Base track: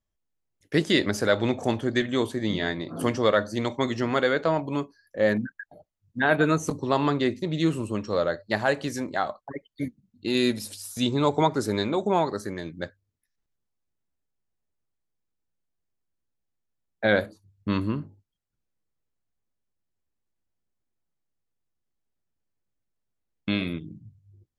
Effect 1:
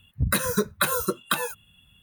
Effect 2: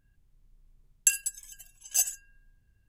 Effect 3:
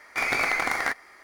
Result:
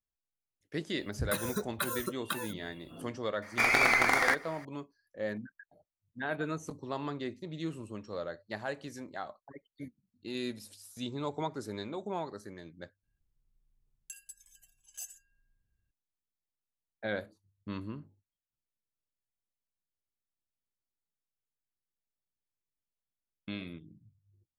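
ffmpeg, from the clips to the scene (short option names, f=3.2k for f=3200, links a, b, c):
-filter_complex "[0:a]volume=-13.5dB[a];[1:a]acompressor=mode=upward:threshold=-38dB:ratio=2.5:attack=3.2:release=140:knee=2.83:detection=peak[b];[2:a]alimiter=limit=-17.5dB:level=0:latency=1:release=383[c];[a]asplit=2[d][e];[d]atrim=end=13.034[f];[c]atrim=end=2.88,asetpts=PTS-STARTPTS,volume=-13dB[g];[e]atrim=start=15.906[h];[b]atrim=end=2.02,asetpts=PTS-STARTPTS,volume=-11dB,afade=t=in:d=0.004:c=hsin,afade=t=out:st=2.016:d=0.004:c=hsin,adelay=990[i];[3:a]atrim=end=1.23,asetpts=PTS-STARTPTS,afade=t=in:d=0.004:c=hsin,afade=t=out:st=1.226:d=0.004:c=hsin,adelay=3420[j];[f][g]acrossfade=d=0.004:c1=hsin:c2=hsin[k];[k][h]acrossfade=d=0.004:c1=hsin:c2=hsin[l];[l][i][j]amix=inputs=3:normalize=0"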